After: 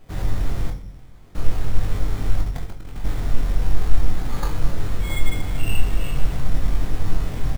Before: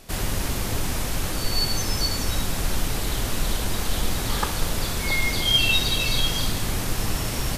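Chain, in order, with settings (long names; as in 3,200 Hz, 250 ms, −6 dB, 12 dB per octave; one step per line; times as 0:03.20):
0:00.70–0:01.35: fill with room tone
low-shelf EQ 200 Hz +8 dB
0:02.40–0:03.06: compressor whose output falls as the input rises −23 dBFS, ratio −0.5
double-tracking delay 22 ms −5 dB
convolution reverb RT60 0.60 s, pre-delay 7 ms, DRR 4 dB
bad sample-rate conversion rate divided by 8×, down filtered, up hold
level −7.5 dB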